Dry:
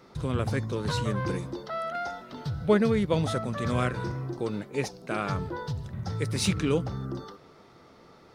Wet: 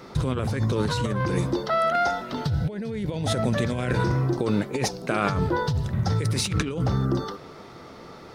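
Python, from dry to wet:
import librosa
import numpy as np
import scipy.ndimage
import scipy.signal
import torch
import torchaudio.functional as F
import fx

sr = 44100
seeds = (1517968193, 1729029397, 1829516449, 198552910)

y = fx.peak_eq(x, sr, hz=1200.0, db=-14.5, octaves=0.22, at=(2.47, 3.99))
y = fx.over_compress(y, sr, threshold_db=-32.0, ratio=-1.0)
y = y * 10.0 ** (7.5 / 20.0)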